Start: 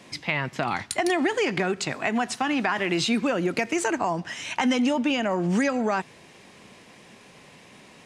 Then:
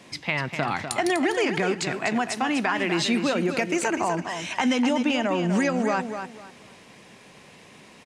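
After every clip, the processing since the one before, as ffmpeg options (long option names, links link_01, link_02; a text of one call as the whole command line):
ffmpeg -i in.wav -af "aecho=1:1:248|496|744:0.398|0.0995|0.0249" out.wav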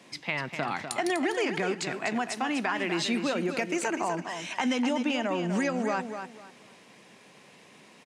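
ffmpeg -i in.wav -af "highpass=150,volume=-4.5dB" out.wav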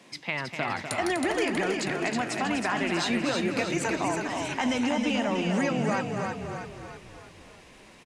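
ffmpeg -i in.wav -filter_complex "[0:a]asplit=8[link_01][link_02][link_03][link_04][link_05][link_06][link_07][link_08];[link_02]adelay=320,afreqshift=-32,volume=-4.5dB[link_09];[link_03]adelay=640,afreqshift=-64,volume=-10.2dB[link_10];[link_04]adelay=960,afreqshift=-96,volume=-15.9dB[link_11];[link_05]adelay=1280,afreqshift=-128,volume=-21.5dB[link_12];[link_06]adelay=1600,afreqshift=-160,volume=-27.2dB[link_13];[link_07]adelay=1920,afreqshift=-192,volume=-32.9dB[link_14];[link_08]adelay=2240,afreqshift=-224,volume=-38.6dB[link_15];[link_01][link_09][link_10][link_11][link_12][link_13][link_14][link_15]amix=inputs=8:normalize=0" out.wav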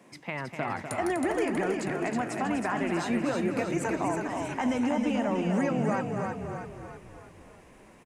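ffmpeg -i in.wav -af "equalizer=frequency=4000:width_type=o:width=1.6:gain=-13" out.wav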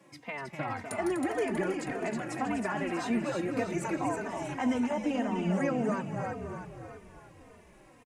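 ffmpeg -i in.wav -filter_complex "[0:a]asplit=2[link_01][link_02];[link_02]adelay=3.1,afreqshift=-1.8[link_03];[link_01][link_03]amix=inputs=2:normalize=1" out.wav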